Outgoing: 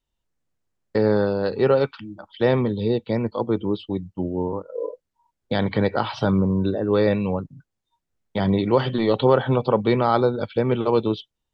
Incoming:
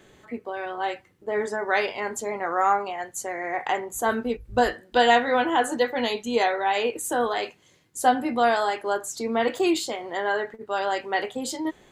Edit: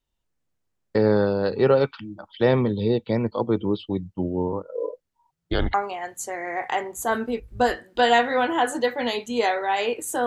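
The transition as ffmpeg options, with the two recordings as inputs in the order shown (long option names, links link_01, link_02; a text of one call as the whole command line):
ffmpeg -i cue0.wav -i cue1.wav -filter_complex "[0:a]asettb=1/sr,asplit=3[link_01][link_02][link_03];[link_01]atrim=end=5.304[link_04];[link_02]atrim=start=5.3:end=5.74,asetpts=PTS-STARTPTS,afade=type=in:duration=0.004:curve=qsin,afade=type=out:start_time=0.436:duration=0.004:curve=qsin,afreqshift=-170[link_05];[link_03]atrim=start=5.736[link_06];[link_04][link_05]acrossfade=duration=0.004:curve1=hsin:curve2=qsin[link_07];[link_07][link_06]acrossfade=duration=0.004:curve1=qsin:curve2=hsin,apad=whole_dur=10.26,atrim=end=10.26,atrim=end=5.742[link_08];[1:a]atrim=start=2.708:end=7.23[link_09];[link_08][link_09]acrossfade=duration=0.004:curve1=hsin:curve2=hsin" out.wav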